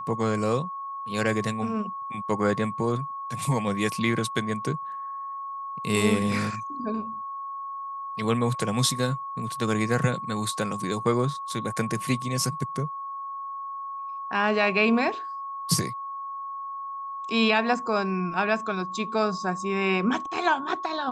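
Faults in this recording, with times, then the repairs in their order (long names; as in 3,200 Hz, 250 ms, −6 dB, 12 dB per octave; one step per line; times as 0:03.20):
whistle 1,100 Hz −32 dBFS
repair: notch filter 1,100 Hz, Q 30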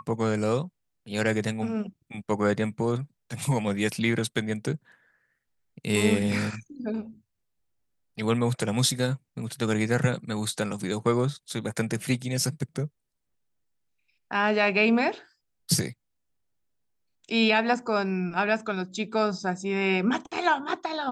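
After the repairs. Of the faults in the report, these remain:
none of them is left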